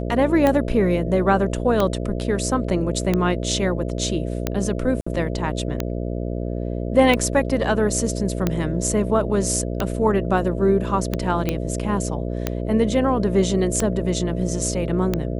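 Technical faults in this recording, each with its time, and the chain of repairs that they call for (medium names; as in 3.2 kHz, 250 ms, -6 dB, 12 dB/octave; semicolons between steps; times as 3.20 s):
buzz 60 Hz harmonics 11 -26 dBFS
tick 45 rpm -7 dBFS
5.01–5.07 s: dropout 55 ms
11.49 s: pop -8 dBFS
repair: de-click; de-hum 60 Hz, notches 11; interpolate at 5.01 s, 55 ms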